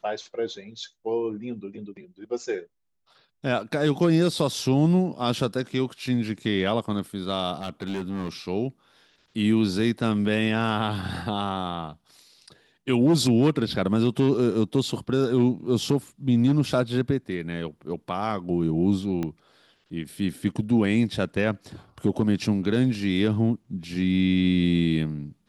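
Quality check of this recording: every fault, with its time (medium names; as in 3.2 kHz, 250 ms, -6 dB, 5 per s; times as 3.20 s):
7.56–8.29 s: clipped -25 dBFS
19.23 s: pop -17 dBFS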